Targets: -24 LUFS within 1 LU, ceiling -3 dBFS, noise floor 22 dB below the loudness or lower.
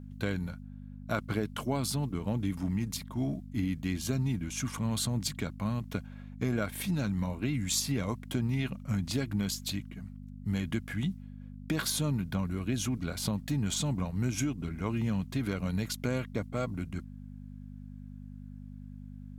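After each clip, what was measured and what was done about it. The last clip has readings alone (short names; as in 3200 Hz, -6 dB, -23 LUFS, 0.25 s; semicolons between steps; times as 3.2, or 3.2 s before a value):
hum 50 Hz; harmonics up to 250 Hz; hum level -42 dBFS; loudness -33.0 LUFS; peak -14.0 dBFS; loudness target -24.0 LUFS
-> de-hum 50 Hz, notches 5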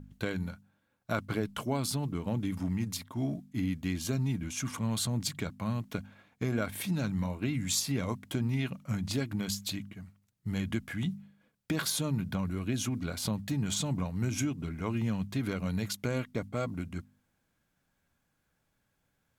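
hum none; loudness -33.5 LUFS; peak -14.5 dBFS; loudness target -24.0 LUFS
-> gain +9.5 dB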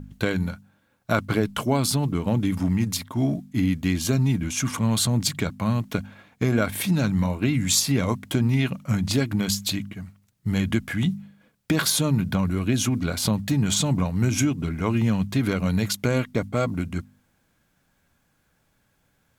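loudness -24.0 LUFS; peak -5.0 dBFS; noise floor -68 dBFS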